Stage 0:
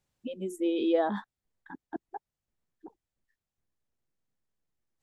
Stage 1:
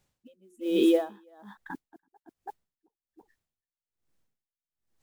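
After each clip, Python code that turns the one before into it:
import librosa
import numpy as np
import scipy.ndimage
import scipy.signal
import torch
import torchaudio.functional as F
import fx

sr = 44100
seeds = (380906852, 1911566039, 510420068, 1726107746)

y = fx.mod_noise(x, sr, seeds[0], snr_db=29)
y = y + 10.0 ** (-8.0 / 20.0) * np.pad(y, (int(331 * sr / 1000.0), 0))[:len(y)]
y = y * 10.0 ** (-32 * (0.5 - 0.5 * np.cos(2.0 * np.pi * 1.2 * np.arange(len(y)) / sr)) / 20.0)
y = y * 10.0 ** (7.5 / 20.0)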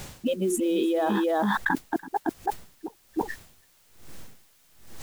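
y = fx.env_flatten(x, sr, amount_pct=100)
y = y * 10.0 ** (-5.5 / 20.0)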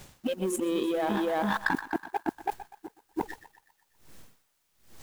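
y = fx.echo_banded(x, sr, ms=123, feedback_pct=66, hz=1300.0, wet_db=-8.0)
y = fx.quant_dither(y, sr, seeds[1], bits=10, dither='triangular')
y = fx.power_curve(y, sr, exponent=1.4)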